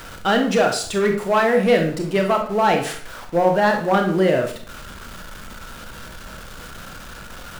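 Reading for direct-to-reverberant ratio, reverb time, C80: 3.0 dB, 0.50 s, 12.0 dB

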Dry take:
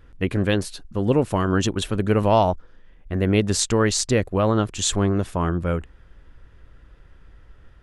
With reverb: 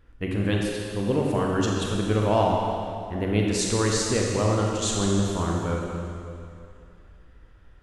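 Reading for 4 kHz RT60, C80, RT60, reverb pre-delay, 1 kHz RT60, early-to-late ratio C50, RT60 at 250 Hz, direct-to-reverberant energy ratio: 2.3 s, 1.5 dB, 2.5 s, 23 ms, 2.5 s, 0.0 dB, 2.5 s, -1.5 dB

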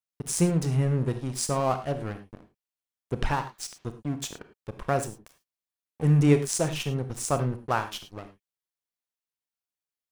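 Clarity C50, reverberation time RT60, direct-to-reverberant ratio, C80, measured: 11.0 dB, not exponential, 9.0 dB, 15.0 dB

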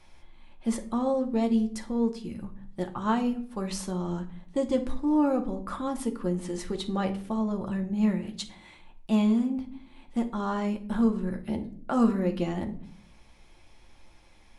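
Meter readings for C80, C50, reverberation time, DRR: 18.0 dB, 13.0 dB, 0.55 s, 4.0 dB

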